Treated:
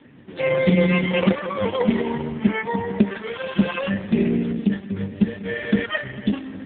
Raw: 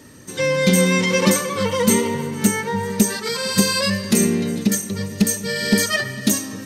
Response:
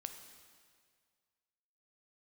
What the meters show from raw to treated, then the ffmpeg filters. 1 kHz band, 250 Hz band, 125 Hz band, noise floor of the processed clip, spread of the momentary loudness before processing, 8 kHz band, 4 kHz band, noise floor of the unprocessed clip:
-3.5 dB, -1.5 dB, -1.5 dB, -39 dBFS, 7 LU, under -40 dB, -10.5 dB, -34 dBFS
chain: -ar 8000 -c:a libopencore_amrnb -b:a 4750

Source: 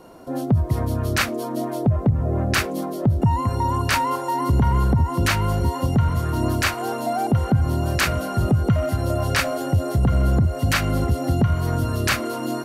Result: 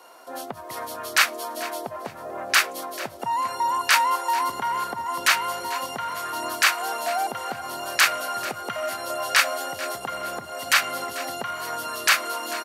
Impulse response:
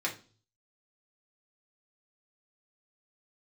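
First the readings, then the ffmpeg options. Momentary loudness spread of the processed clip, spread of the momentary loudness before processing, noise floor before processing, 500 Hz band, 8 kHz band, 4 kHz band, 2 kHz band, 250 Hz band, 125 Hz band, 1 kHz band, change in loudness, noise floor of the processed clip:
13 LU, 4 LU, -29 dBFS, -6.0 dB, +4.0 dB, +4.0 dB, +4.0 dB, -18.0 dB, -32.0 dB, +1.0 dB, -2.5 dB, -40 dBFS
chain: -af "highpass=940,aecho=1:1:442|884|1326:0.15|0.0389|0.0101,volume=4dB"

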